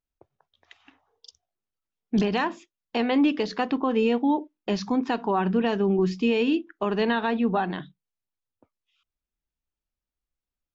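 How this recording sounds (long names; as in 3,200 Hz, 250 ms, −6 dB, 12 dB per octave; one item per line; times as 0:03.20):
background noise floor −91 dBFS
spectral slope −4.5 dB per octave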